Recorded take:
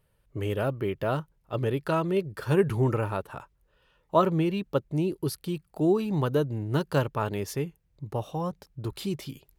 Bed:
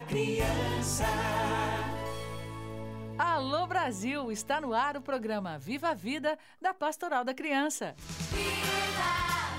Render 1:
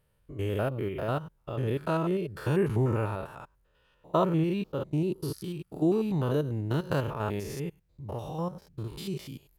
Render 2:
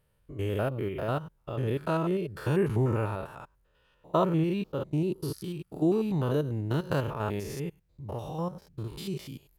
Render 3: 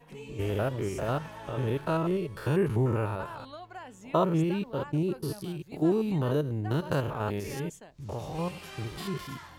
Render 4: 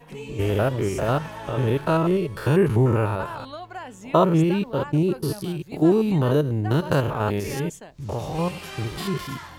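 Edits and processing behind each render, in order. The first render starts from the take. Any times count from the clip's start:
stepped spectrum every 0.1 s
nothing audible
add bed -14 dB
gain +7.5 dB

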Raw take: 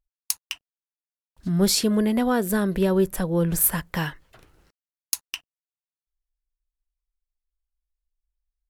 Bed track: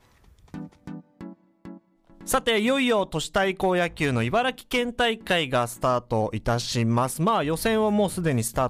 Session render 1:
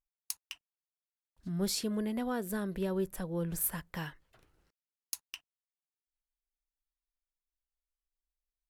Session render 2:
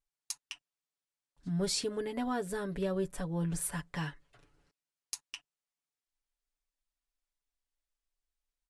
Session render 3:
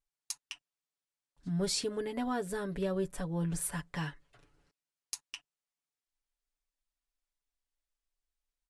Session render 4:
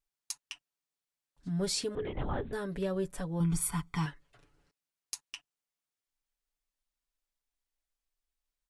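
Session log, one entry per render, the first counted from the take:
gain -12.5 dB
steep low-pass 10000 Hz 36 dB/oct; comb 7 ms, depth 72%
nothing audible
1.95–2.53 LPC vocoder at 8 kHz whisper; 3.4–4.06 comb 0.9 ms, depth 97%

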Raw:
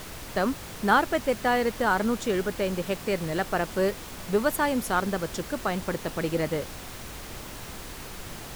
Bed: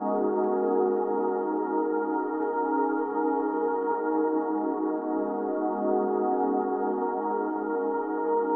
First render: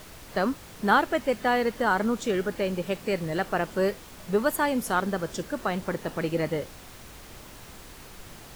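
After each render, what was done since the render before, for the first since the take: noise print and reduce 6 dB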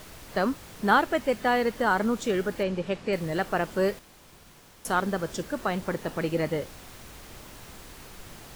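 2.63–3.13 air absorption 78 m; 3.99–4.85 room tone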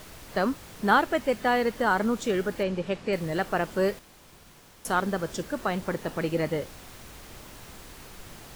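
nothing audible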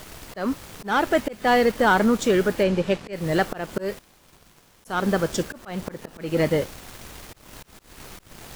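sample leveller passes 2; auto swell 0.245 s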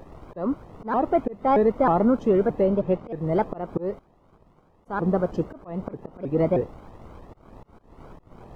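polynomial smoothing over 65 samples; shaped vibrato saw up 3.2 Hz, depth 250 cents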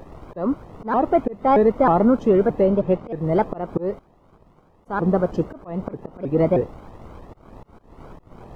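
gain +3.5 dB

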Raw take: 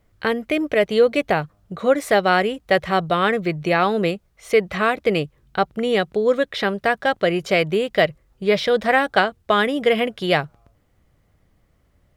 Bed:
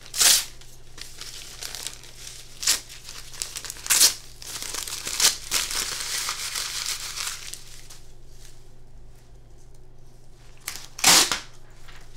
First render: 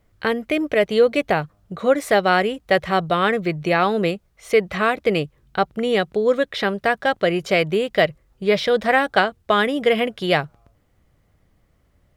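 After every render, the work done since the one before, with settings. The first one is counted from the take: nothing audible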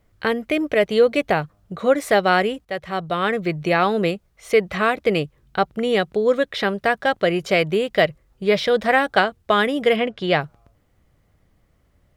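2.65–3.54 fade in, from -12.5 dB; 9.96–10.41 air absorption 88 m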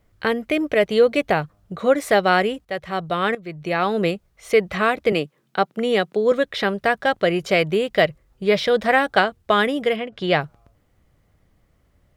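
3.35–4.04 fade in, from -16.5 dB; 5.12–6.32 HPF 170 Hz 24 dB/oct; 9.7–10.12 fade out linear, to -10.5 dB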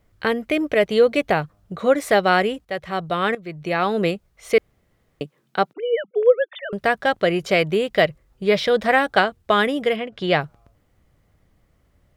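4.58–5.21 room tone; 5.73–6.73 sine-wave speech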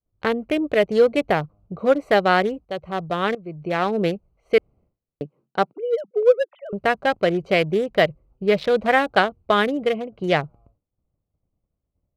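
Wiener smoothing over 25 samples; expander -49 dBFS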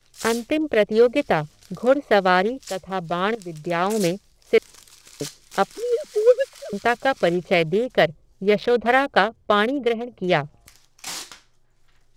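add bed -17 dB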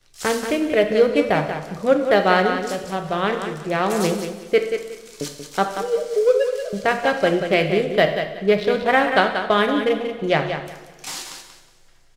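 on a send: feedback echo 0.184 s, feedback 22%, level -8 dB; on the sum: two-slope reverb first 0.79 s, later 2.9 s, DRR 5.5 dB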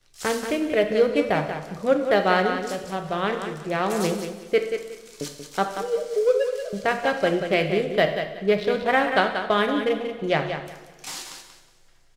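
gain -3.5 dB

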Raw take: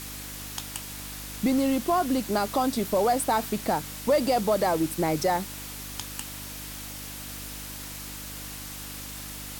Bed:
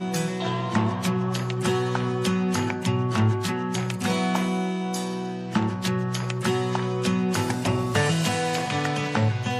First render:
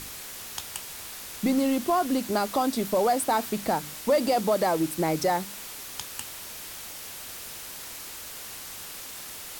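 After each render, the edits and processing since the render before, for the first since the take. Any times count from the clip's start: de-hum 50 Hz, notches 6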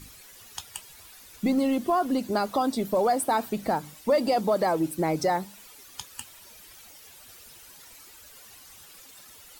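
denoiser 13 dB, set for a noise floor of -40 dBFS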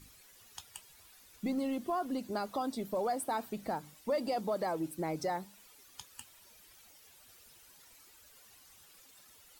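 gain -10 dB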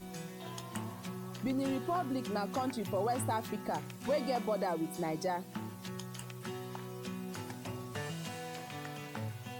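add bed -18 dB

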